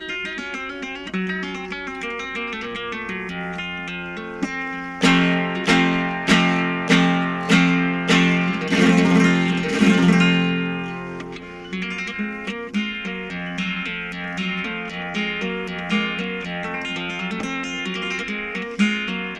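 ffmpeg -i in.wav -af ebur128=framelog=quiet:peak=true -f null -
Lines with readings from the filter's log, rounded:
Integrated loudness:
  I:         -21.2 LUFS
  Threshold: -31.3 LUFS
Loudness range:
  LRA:        10.1 LU
  Threshold: -40.9 LUFS
  LRA low:   -27.2 LUFS
  LRA high:  -17.1 LUFS
True peak:
  Peak:       -2.7 dBFS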